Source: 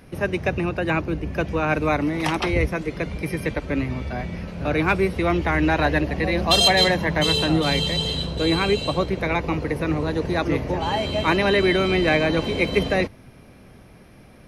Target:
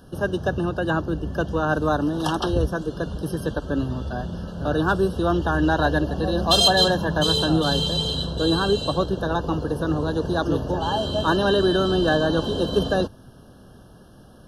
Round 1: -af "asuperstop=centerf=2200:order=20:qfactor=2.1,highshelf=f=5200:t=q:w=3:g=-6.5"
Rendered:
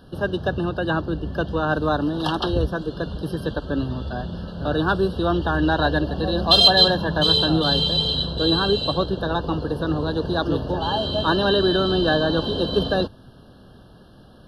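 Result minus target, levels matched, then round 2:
8 kHz band -11.5 dB
-af "asuperstop=centerf=2200:order=20:qfactor=2.1"

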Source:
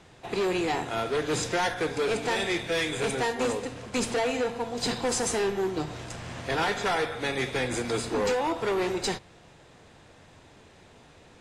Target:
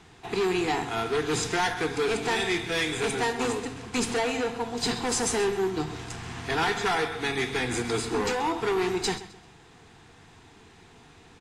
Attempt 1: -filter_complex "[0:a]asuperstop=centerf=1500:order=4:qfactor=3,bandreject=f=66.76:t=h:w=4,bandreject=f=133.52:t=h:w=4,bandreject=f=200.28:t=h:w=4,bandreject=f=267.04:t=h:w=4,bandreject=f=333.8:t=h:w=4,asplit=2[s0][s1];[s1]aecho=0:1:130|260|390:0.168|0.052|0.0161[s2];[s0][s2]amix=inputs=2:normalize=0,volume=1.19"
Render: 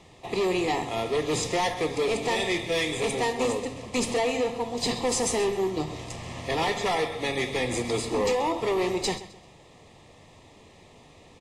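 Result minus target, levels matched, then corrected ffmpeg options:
2 kHz band -2.5 dB
-filter_complex "[0:a]asuperstop=centerf=570:order=4:qfactor=3,bandreject=f=66.76:t=h:w=4,bandreject=f=133.52:t=h:w=4,bandreject=f=200.28:t=h:w=4,bandreject=f=267.04:t=h:w=4,bandreject=f=333.8:t=h:w=4,asplit=2[s0][s1];[s1]aecho=0:1:130|260|390:0.168|0.052|0.0161[s2];[s0][s2]amix=inputs=2:normalize=0,volume=1.19"

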